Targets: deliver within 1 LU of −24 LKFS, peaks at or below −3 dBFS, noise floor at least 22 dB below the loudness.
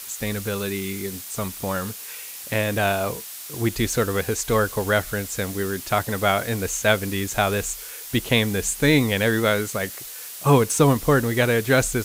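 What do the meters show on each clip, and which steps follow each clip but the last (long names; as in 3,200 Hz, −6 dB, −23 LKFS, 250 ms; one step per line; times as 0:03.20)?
background noise floor −37 dBFS; target noise floor −45 dBFS; integrated loudness −22.5 LKFS; sample peak −3.5 dBFS; target loudness −24.0 LKFS
→ broadband denoise 8 dB, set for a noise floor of −37 dBFS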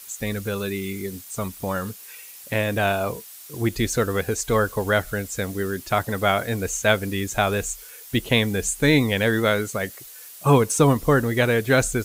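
background noise floor −43 dBFS; target noise floor −45 dBFS
→ broadband denoise 6 dB, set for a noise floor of −43 dBFS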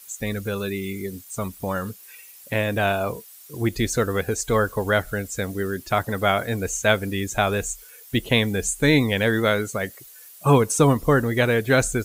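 background noise floor −46 dBFS; integrated loudness −23.0 LKFS; sample peak −4.0 dBFS; target loudness −24.0 LKFS
→ level −1 dB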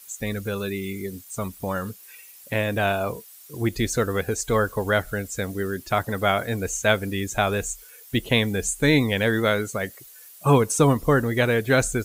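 integrated loudness −24.0 LKFS; sample peak −5.0 dBFS; background noise floor −47 dBFS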